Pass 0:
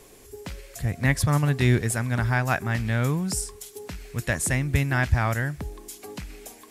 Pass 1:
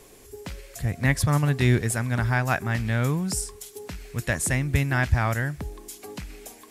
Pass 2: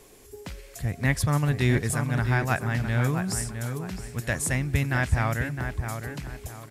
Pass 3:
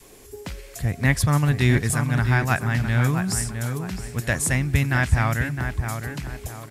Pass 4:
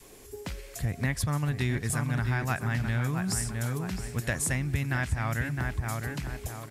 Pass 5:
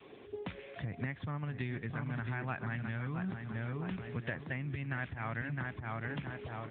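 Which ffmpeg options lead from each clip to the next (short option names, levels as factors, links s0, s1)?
-af anull
-filter_complex "[0:a]asplit=2[s0][s1];[s1]adelay=661,lowpass=f=2600:p=1,volume=0.447,asplit=2[s2][s3];[s3]adelay=661,lowpass=f=2600:p=1,volume=0.34,asplit=2[s4][s5];[s5]adelay=661,lowpass=f=2600:p=1,volume=0.34,asplit=2[s6][s7];[s7]adelay=661,lowpass=f=2600:p=1,volume=0.34[s8];[s0][s2][s4][s6][s8]amix=inputs=5:normalize=0,volume=0.794"
-af "adynamicequalizer=threshold=0.00708:dfrequency=500:dqfactor=1.3:tfrequency=500:tqfactor=1.3:attack=5:release=100:ratio=0.375:range=2.5:mode=cutabove:tftype=bell,volume=1.68"
-af "acompressor=threshold=0.0794:ratio=5,volume=0.708"
-af "acompressor=threshold=0.0224:ratio=8,lowshelf=f=110:g=-6.5,volume=1.19" -ar 8000 -c:a libopencore_amrnb -b:a 10200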